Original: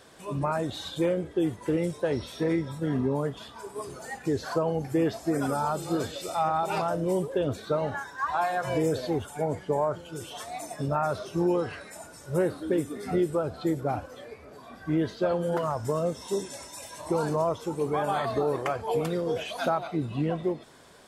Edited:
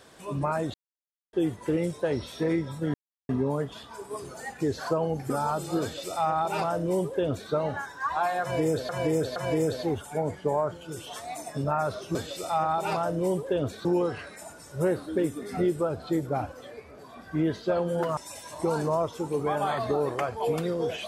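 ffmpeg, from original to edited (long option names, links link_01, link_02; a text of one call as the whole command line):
ffmpeg -i in.wav -filter_complex "[0:a]asplit=10[link_01][link_02][link_03][link_04][link_05][link_06][link_07][link_08][link_09][link_10];[link_01]atrim=end=0.74,asetpts=PTS-STARTPTS,afade=type=out:start_time=0.736:duration=0.004:curve=hsin[link_11];[link_02]atrim=start=0.74:end=1.33,asetpts=PTS-STARTPTS,volume=0[link_12];[link_03]atrim=start=1.33:end=2.94,asetpts=PTS-STARTPTS,afade=type=in:duration=0.004:curve=hsin,afade=type=out:start_time=1.606:duration=0.004:curve=hsin,apad=pad_dur=0.35[link_13];[link_04]atrim=start=2.94:end=4.952,asetpts=PTS-STARTPTS,afade=type=in:duration=0.004:curve=hsin[link_14];[link_05]atrim=start=5.478:end=9.072[link_15];[link_06]atrim=start=8.598:end=9.072[link_16];[link_07]atrim=start=8.598:end=11.392[link_17];[link_08]atrim=start=5.998:end=7.702[link_18];[link_09]atrim=start=11.388:end=15.712[link_19];[link_10]atrim=start=16.638[link_20];[link_11][link_12][link_13][link_14]concat=n=4:v=0:a=1[link_21];[link_21][link_15]acrossfade=duration=0.004:curve1=hsin:curve2=hsin[link_22];[link_22][link_16]acrossfade=duration=0.004:curve1=hsin:curve2=hsin[link_23];[link_23][link_17]acrossfade=duration=0.004:curve1=hsin:curve2=hsin[link_24];[link_24][link_18]acrossfade=duration=0.004:curve1=hsin:curve2=hsin[link_25];[link_25][link_19]acrossfade=duration=0.004:curve1=hsin:curve2=hsin[link_26];[link_26][link_20]acrossfade=duration=0.004:curve1=hsin:curve2=hsin" out.wav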